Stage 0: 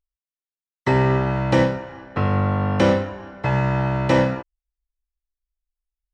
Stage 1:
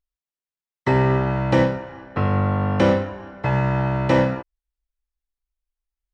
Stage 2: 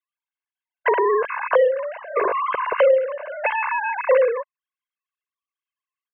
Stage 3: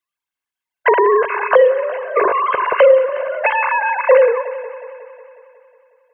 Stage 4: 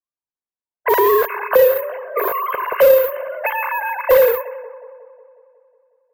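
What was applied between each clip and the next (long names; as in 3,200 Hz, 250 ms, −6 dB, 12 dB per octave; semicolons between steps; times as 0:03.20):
high-shelf EQ 4,400 Hz −6 dB
three sine waves on the formant tracks; comb filter 1.9 ms, depth 69%; downward compressor 2 to 1, threshold −24 dBFS, peak gain reduction 10 dB; level +3.5 dB
echo machine with several playback heads 182 ms, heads first and second, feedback 51%, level −18.5 dB; level +6 dB
bad sample-rate conversion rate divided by 3×, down filtered, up zero stuff; low-pass that shuts in the quiet parts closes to 730 Hz, open at −4 dBFS; slew-rate limiting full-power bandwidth 1,300 Hz; level −5 dB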